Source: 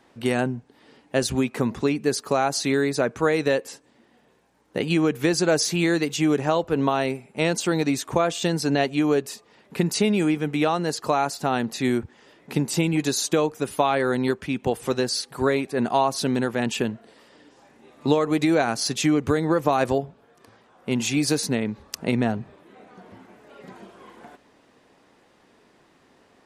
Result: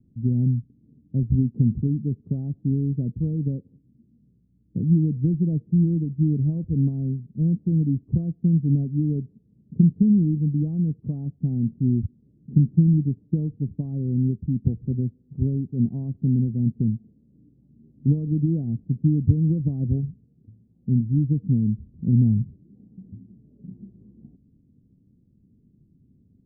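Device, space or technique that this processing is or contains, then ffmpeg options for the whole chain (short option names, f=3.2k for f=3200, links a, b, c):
the neighbour's flat through the wall: -af "lowpass=f=200:w=0.5412,lowpass=f=200:w=1.3066,equalizer=f=100:t=o:w=0.81:g=4,volume=9dB"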